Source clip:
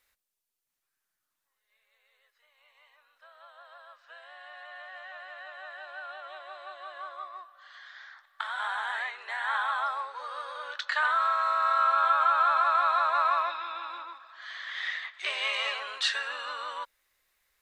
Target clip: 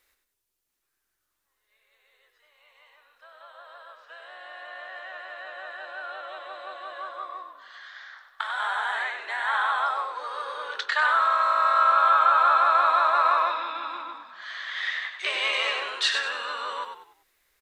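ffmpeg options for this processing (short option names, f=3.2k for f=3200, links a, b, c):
-filter_complex "[0:a]equalizer=f=370:w=2.3:g=7,asplit=5[a][b][c][d][e];[b]adelay=97,afreqshift=-46,volume=-7dB[f];[c]adelay=194,afreqshift=-92,volume=-16.4dB[g];[d]adelay=291,afreqshift=-138,volume=-25.7dB[h];[e]adelay=388,afreqshift=-184,volume=-35.1dB[i];[a][f][g][h][i]amix=inputs=5:normalize=0,volume=3.5dB"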